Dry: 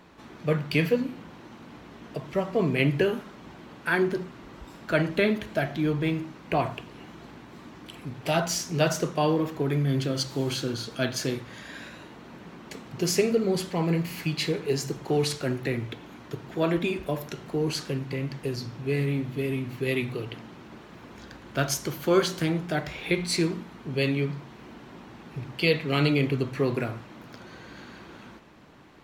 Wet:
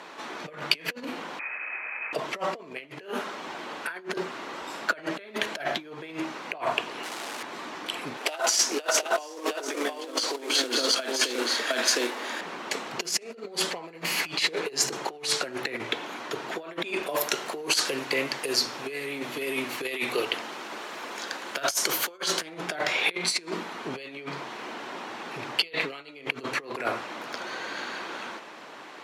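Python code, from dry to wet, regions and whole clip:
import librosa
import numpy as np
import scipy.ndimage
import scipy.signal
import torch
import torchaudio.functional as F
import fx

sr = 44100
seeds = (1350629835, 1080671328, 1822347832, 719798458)

y = fx.chain(x, sr, fx.highpass(hz=230.0, slope=24),
    fx.freq_invert(carrier_hz=2800), at=(1.39, 2.13))
y = fx.chain(y, sr, fx.clip_1bit(),
    fx.highpass(hz=170.0, slope=12), at=(7.03, 7.43))
y = fx.chain(y, sr, fx.steep_highpass(hz=210.0, slope=72),
    fx.quant_float(bits=2),
    fx.echo_single(ms=713, db=-3.5), at=(8.17, 12.41))
y = fx.chain(y, sr, fx.highpass(hz=200.0, slope=6),
    fx.high_shelf(hz=7000.0, db=9.0), at=(17.09, 22.18))
y = scipy.signal.sosfilt(scipy.signal.butter(2, 11000.0, 'lowpass', fs=sr, output='sos'), y)
y = fx.over_compress(y, sr, threshold_db=-32.0, ratio=-0.5)
y = scipy.signal.sosfilt(scipy.signal.butter(2, 510.0, 'highpass', fs=sr, output='sos'), y)
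y = y * 10.0 ** (7.5 / 20.0)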